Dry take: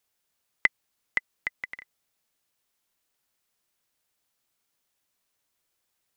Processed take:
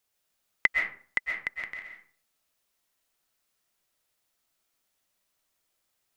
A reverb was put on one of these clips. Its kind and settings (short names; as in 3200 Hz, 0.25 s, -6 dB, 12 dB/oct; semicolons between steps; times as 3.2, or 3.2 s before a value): digital reverb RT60 0.46 s, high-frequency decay 0.6×, pre-delay 90 ms, DRR 2 dB; gain -1 dB